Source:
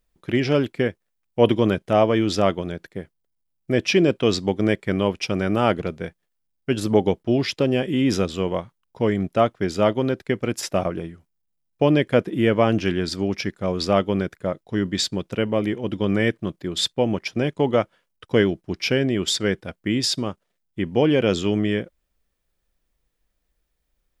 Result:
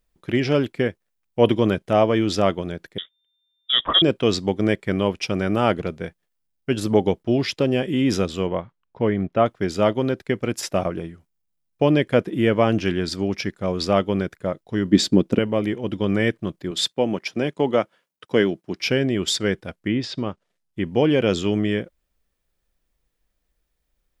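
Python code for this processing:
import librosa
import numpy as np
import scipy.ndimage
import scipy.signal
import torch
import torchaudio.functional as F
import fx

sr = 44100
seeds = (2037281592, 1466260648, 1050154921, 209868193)

y = fx.freq_invert(x, sr, carrier_hz=3600, at=(2.98, 4.02))
y = fx.lowpass(y, sr, hz=2800.0, slope=12, at=(8.47, 9.46))
y = fx.peak_eq(y, sr, hz=270.0, db=14.5, octaves=1.7, at=(14.91, 15.39))
y = fx.highpass(y, sr, hz=160.0, slope=12, at=(16.71, 18.81))
y = fx.env_lowpass_down(y, sr, base_hz=2400.0, full_db=-18.0, at=(19.73, 20.82))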